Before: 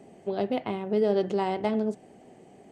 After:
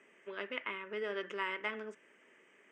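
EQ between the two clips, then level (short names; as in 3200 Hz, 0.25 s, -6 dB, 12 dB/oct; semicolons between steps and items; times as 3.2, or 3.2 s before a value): HPF 1100 Hz 12 dB/oct; air absorption 140 m; fixed phaser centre 1800 Hz, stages 4; +7.0 dB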